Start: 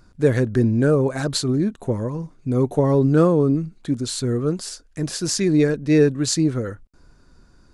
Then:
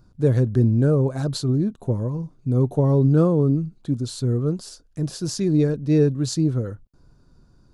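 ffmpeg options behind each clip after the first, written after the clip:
ffmpeg -i in.wav -af "equalizer=frequency=125:width_type=o:width=1:gain=7,equalizer=frequency=2000:width_type=o:width=1:gain=-10,equalizer=frequency=8000:width_type=o:width=1:gain=-5,volume=-3.5dB" out.wav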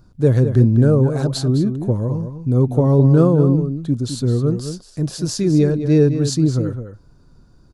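ffmpeg -i in.wav -filter_complex "[0:a]asplit=2[link_01][link_02];[link_02]adelay=209.9,volume=-9dB,highshelf=frequency=4000:gain=-4.72[link_03];[link_01][link_03]amix=inputs=2:normalize=0,volume=4dB" out.wav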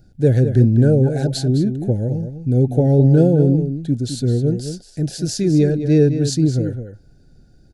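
ffmpeg -i in.wav -af "asuperstop=centerf=1100:order=20:qfactor=2" out.wav

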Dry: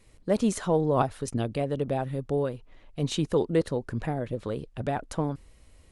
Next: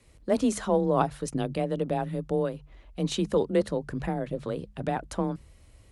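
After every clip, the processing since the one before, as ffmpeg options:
ffmpeg -i in.wav -af "bandreject=frequency=60:width_type=h:width=6,bandreject=frequency=120:width_type=h:width=6,bandreject=frequency=180:width_type=h:width=6,afreqshift=25" out.wav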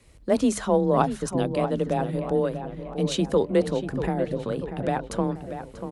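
ffmpeg -i in.wav -filter_complex "[0:a]asplit=2[link_01][link_02];[link_02]adelay=639,lowpass=frequency=2800:poles=1,volume=-9.5dB,asplit=2[link_03][link_04];[link_04]adelay=639,lowpass=frequency=2800:poles=1,volume=0.52,asplit=2[link_05][link_06];[link_06]adelay=639,lowpass=frequency=2800:poles=1,volume=0.52,asplit=2[link_07][link_08];[link_08]adelay=639,lowpass=frequency=2800:poles=1,volume=0.52,asplit=2[link_09][link_10];[link_10]adelay=639,lowpass=frequency=2800:poles=1,volume=0.52,asplit=2[link_11][link_12];[link_12]adelay=639,lowpass=frequency=2800:poles=1,volume=0.52[link_13];[link_01][link_03][link_05][link_07][link_09][link_11][link_13]amix=inputs=7:normalize=0,volume=3dB" out.wav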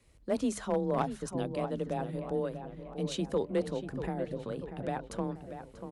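ffmpeg -i in.wav -af "aeval=exprs='clip(val(0),-1,0.224)':channel_layout=same,volume=-9dB" out.wav

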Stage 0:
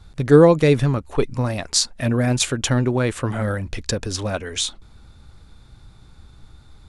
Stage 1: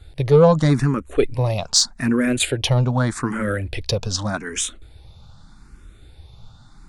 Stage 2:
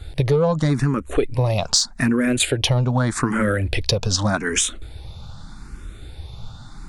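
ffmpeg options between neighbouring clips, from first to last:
ffmpeg -i in.wav -filter_complex "[0:a]acontrast=35,asplit=2[link_01][link_02];[link_02]afreqshift=0.83[link_03];[link_01][link_03]amix=inputs=2:normalize=1,volume=-1dB" out.wav
ffmpeg -i in.wav -af "acompressor=threshold=-25dB:ratio=5,volume=8.5dB" out.wav

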